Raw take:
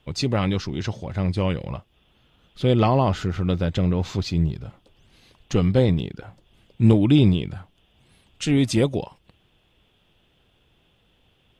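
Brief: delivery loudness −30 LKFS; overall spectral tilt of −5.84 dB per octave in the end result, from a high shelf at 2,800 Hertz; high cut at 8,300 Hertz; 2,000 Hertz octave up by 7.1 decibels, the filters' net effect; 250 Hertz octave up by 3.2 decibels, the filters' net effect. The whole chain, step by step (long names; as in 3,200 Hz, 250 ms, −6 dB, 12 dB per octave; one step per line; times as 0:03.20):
low-pass filter 8,300 Hz
parametric band 250 Hz +4 dB
parametric band 2,000 Hz +5.5 dB
high-shelf EQ 2,800 Hz +7.5 dB
level −10.5 dB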